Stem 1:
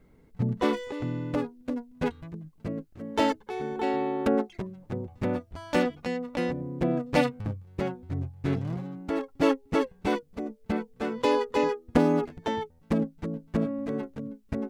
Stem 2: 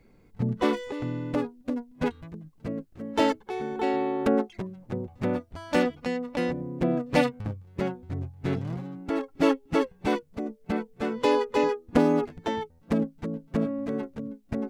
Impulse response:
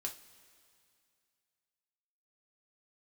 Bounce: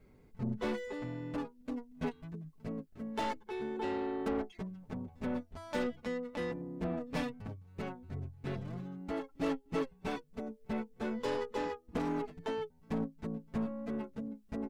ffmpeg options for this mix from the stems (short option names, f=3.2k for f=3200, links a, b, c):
-filter_complex "[0:a]acompressor=threshold=-41dB:ratio=2,volume=-5dB[a];[1:a]aeval=exprs='(tanh(15.8*val(0)+0.3)-tanh(0.3))/15.8':c=same,asplit=2[b][c];[c]adelay=4.9,afreqshift=-0.38[d];[b][d]amix=inputs=2:normalize=1,adelay=4.6,volume=-4.5dB[e];[a][e]amix=inputs=2:normalize=0"